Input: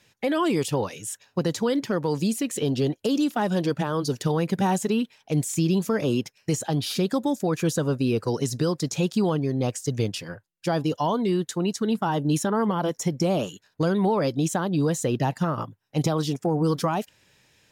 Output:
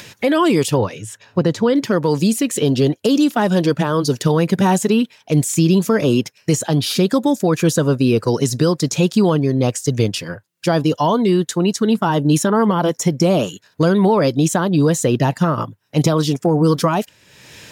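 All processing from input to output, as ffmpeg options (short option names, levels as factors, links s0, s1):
-filter_complex "[0:a]asettb=1/sr,asplit=3[s0][s1][s2];[s0]atrim=end=0.774[s3];[s1]atrim=start=0.77:end=1.76,asetpts=PTS-STARTPTS,afade=t=in:d=0.004:c=qsin,afade=t=out:st=0.986:d=0.004:c=qsin,lowpass=f=2400:p=1,equalizer=f=110:t=o:w=0.35:g=6.5[s4];[s2]atrim=start=1.756[s5];[s3][s4]acrossfade=d=0.004:c1=hsin:c2=qsin[s6];[s6][s5]acrossfade=d=0.004:c1=qsin:c2=hsin,bandreject=f=790:w=12,acompressor=mode=upward:threshold=0.0178:ratio=2.5,highpass=63,volume=2.66"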